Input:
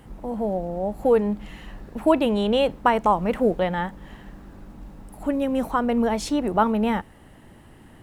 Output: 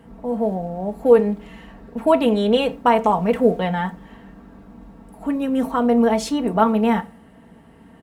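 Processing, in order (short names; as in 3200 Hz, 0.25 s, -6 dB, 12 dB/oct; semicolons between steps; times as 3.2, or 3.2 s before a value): HPF 79 Hz 12 dB/oct; comb 4.4 ms; on a send at -11 dB: reverb RT60 0.35 s, pre-delay 6 ms; on the sum: mismatched tape noise reduction decoder only; gain +1 dB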